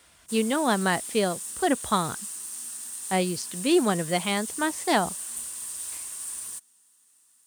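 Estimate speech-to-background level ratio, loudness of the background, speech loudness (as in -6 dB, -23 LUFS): 7.0 dB, -33.5 LUFS, -26.5 LUFS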